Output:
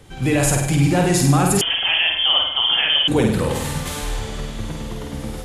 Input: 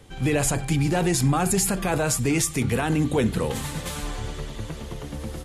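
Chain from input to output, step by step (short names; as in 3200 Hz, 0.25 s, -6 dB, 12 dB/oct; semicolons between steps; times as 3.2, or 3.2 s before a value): flutter echo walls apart 8.6 m, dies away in 0.76 s; 1.61–3.08 inverted band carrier 3300 Hz; gain +3 dB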